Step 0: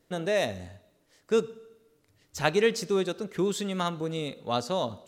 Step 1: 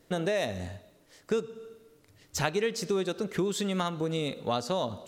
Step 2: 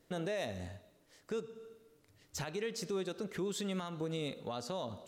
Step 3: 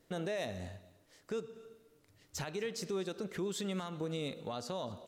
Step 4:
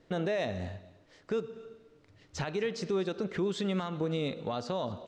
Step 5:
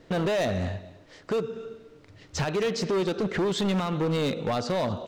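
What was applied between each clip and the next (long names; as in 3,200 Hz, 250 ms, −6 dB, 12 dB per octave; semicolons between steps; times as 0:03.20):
downward compressor 4 to 1, threshold −33 dBFS, peak gain reduction 13 dB; level +6 dB
brickwall limiter −22.5 dBFS, peak gain reduction 11.5 dB; level −6.5 dB
single-tap delay 248 ms −21.5 dB
high-frequency loss of the air 130 metres; level +6.5 dB
gain into a clipping stage and back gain 31.5 dB; level +9 dB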